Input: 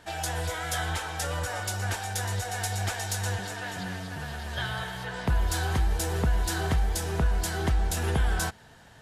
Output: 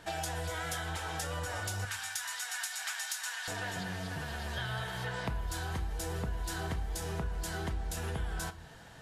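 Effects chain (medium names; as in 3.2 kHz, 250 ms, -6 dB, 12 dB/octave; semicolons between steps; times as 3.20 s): 1.85–3.48 s: high-pass 1.1 kHz 24 dB/octave; compression, threshold -34 dBFS, peak gain reduction 13.5 dB; reverberation RT60 0.50 s, pre-delay 6 ms, DRR 9.5 dB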